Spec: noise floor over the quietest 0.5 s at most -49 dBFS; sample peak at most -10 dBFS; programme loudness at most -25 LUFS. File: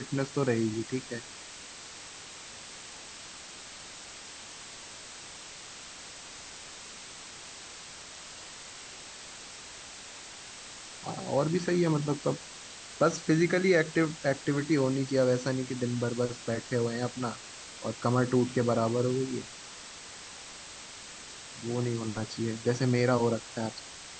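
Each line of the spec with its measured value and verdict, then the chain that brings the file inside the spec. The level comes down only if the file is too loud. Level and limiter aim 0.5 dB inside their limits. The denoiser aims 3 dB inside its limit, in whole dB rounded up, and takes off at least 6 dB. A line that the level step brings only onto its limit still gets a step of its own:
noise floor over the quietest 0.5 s -46 dBFS: fail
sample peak -12.0 dBFS: OK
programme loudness -29.5 LUFS: OK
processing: denoiser 6 dB, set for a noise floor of -46 dBFS

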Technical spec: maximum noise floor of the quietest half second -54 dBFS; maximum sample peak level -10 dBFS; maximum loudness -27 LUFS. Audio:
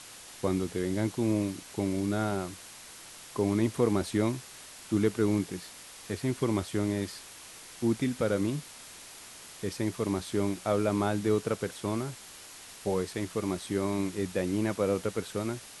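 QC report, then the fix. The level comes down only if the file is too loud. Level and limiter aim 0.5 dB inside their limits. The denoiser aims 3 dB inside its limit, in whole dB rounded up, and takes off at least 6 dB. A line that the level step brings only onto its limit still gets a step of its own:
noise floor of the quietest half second -48 dBFS: fail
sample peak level -13.0 dBFS: OK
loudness -31.0 LUFS: OK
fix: denoiser 9 dB, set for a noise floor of -48 dBFS

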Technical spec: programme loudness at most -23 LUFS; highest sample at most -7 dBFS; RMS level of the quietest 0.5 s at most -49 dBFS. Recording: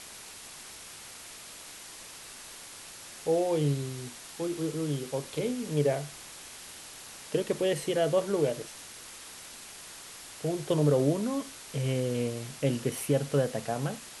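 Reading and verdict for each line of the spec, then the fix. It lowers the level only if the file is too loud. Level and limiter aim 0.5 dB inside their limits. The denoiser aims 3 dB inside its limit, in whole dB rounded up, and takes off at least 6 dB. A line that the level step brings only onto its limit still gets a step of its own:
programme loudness -30.0 LUFS: OK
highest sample -13.0 dBFS: OK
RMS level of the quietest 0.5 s -46 dBFS: fail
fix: denoiser 6 dB, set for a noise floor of -46 dBFS

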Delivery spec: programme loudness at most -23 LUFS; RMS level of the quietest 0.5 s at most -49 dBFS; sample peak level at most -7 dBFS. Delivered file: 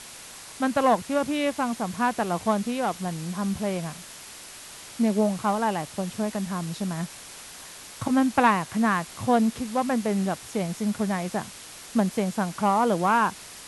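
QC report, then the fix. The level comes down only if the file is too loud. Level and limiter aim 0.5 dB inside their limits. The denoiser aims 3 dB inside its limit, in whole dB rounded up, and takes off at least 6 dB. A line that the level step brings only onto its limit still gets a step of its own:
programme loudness -26.0 LUFS: OK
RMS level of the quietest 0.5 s -43 dBFS: fail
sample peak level -7.5 dBFS: OK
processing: denoiser 9 dB, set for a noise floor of -43 dBFS

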